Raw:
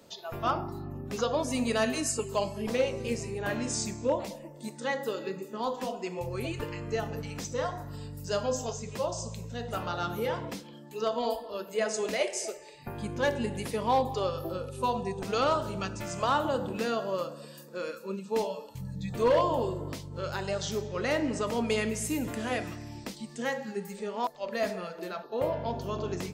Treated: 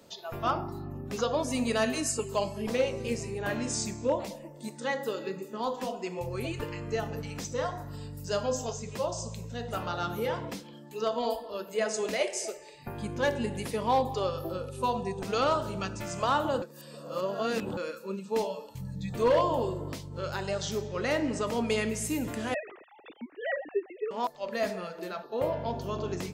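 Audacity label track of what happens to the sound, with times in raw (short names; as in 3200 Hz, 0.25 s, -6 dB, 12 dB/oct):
16.620000	17.770000	reverse
22.540000	24.110000	sine-wave speech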